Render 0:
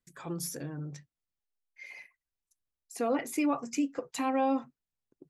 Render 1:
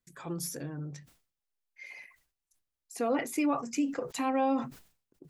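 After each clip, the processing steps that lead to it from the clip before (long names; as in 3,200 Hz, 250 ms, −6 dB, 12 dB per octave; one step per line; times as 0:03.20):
level that may fall only so fast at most 120 dB per second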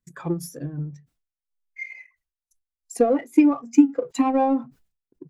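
transient designer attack +11 dB, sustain −9 dB
power curve on the samples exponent 0.7
every bin expanded away from the loudest bin 1.5 to 1
level +5.5 dB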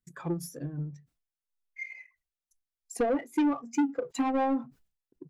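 soft clipping −16.5 dBFS, distortion −9 dB
level −4.5 dB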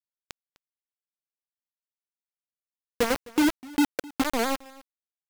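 bit reduction 4 bits
single-tap delay 258 ms −22 dB
wow of a warped record 78 rpm, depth 250 cents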